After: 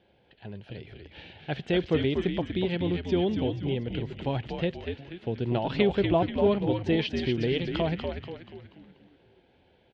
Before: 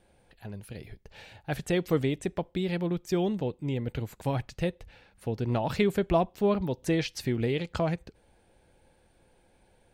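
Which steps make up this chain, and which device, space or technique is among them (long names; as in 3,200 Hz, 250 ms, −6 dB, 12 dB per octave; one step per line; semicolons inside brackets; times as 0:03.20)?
0:05.95–0:06.38: low-pass filter 3,000 Hz
frequency-shifting delay pedal into a guitar cabinet (echo with shifted repeats 241 ms, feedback 47%, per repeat −91 Hz, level −5 dB; loudspeaker in its box 79–4,200 Hz, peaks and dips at 380 Hz +3 dB, 1,200 Hz −6 dB, 3,100 Hz +7 dB)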